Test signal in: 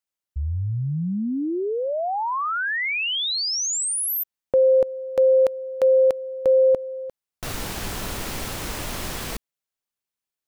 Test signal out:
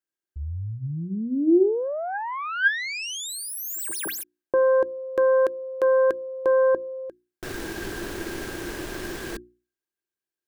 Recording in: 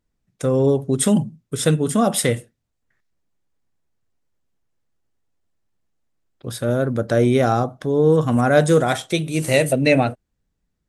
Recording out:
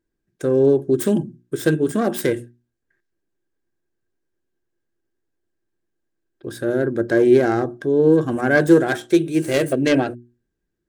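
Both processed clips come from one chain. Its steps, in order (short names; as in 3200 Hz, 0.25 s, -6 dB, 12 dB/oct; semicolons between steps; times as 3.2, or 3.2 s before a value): self-modulated delay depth 0.16 ms; notches 60/120/180/240/300/360 Hz; small resonant body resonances 350/1600 Hz, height 17 dB, ringing for 45 ms; gain -5.5 dB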